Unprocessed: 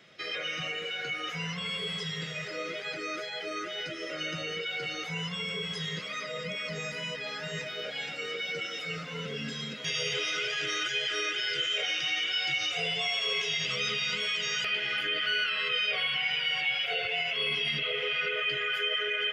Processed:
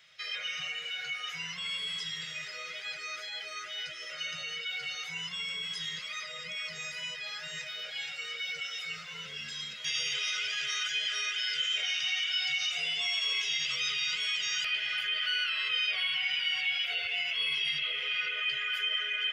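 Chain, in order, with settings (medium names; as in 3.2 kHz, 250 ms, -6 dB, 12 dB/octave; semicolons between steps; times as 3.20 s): amplifier tone stack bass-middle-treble 10-0-10; trim +2 dB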